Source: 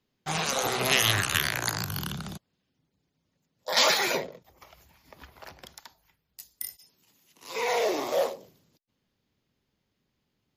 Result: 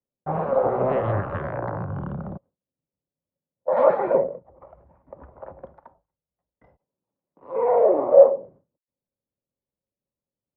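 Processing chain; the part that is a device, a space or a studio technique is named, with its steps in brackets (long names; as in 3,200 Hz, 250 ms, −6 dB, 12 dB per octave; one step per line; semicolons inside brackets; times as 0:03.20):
under water (low-pass filter 1,100 Hz 24 dB per octave; parametric band 550 Hz +12 dB 0.3 octaves)
noise gate with hold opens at −53 dBFS
level +5 dB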